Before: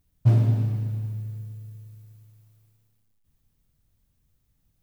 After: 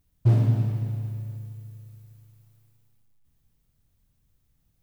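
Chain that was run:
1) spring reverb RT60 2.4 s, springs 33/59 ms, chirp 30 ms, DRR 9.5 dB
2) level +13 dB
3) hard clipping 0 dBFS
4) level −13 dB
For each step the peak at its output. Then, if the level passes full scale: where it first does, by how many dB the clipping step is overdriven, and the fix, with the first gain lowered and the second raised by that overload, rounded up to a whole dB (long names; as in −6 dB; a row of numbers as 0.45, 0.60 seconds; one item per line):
−8.5, +4.5, 0.0, −13.0 dBFS
step 2, 4.5 dB
step 2 +8 dB, step 4 −8 dB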